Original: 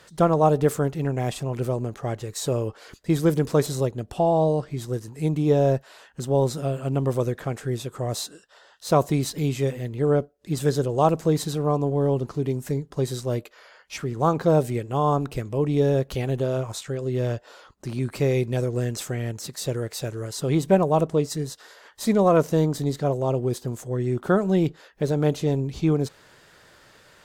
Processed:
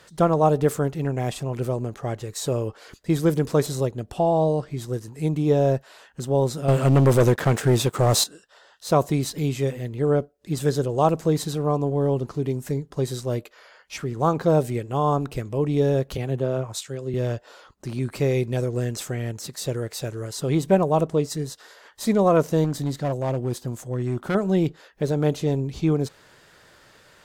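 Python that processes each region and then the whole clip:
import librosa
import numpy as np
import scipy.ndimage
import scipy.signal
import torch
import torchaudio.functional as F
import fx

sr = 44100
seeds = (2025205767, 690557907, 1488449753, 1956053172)

y = fx.chain(x, sr, fx.highpass(hz=73.0, slope=12),
    fx.leveller(passes=3), at=(6.68, 8.24))
y = fx.chain(y, sr, fx.highpass(hz=55.0, slope=12),
    fx.band_widen(depth_pct=70), at=(16.17, 17.14))
y = fx.chain(y, sr, fx.peak_eq(hz=420.0, db=-8.0, octaves=0.24),
    fx.overload_stage(gain_db=19.5), at=(22.64, 24.35))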